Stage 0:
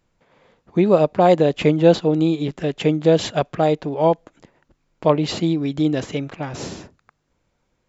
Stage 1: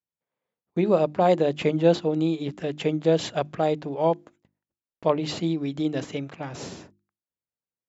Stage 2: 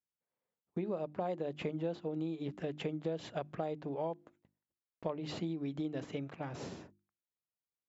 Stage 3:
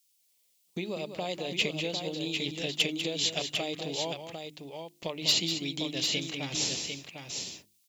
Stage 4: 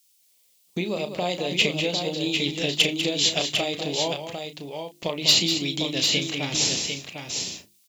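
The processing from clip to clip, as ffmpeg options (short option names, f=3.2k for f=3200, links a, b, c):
-af "highpass=81,agate=range=-25dB:threshold=-43dB:ratio=16:detection=peak,bandreject=f=50:t=h:w=6,bandreject=f=100:t=h:w=6,bandreject=f=150:t=h:w=6,bandreject=f=200:t=h:w=6,bandreject=f=250:t=h:w=6,bandreject=f=300:t=h:w=6,bandreject=f=350:t=h:w=6,volume=-5.5dB"
-af "highshelf=f=3.9k:g=-10,acompressor=threshold=-28dB:ratio=6,volume=-6dB"
-filter_complex "[0:a]aexciter=amount=14.6:drive=3.3:freq=2.3k,volume=18dB,asoftclip=hard,volume=-18dB,asplit=2[a][b];[b]aecho=0:1:196|750:0.355|0.501[c];[a][c]amix=inputs=2:normalize=0,volume=1dB"
-filter_complex "[0:a]asplit=2[a][b];[b]adelay=34,volume=-9.5dB[c];[a][c]amix=inputs=2:normalize=0,volume=7dB"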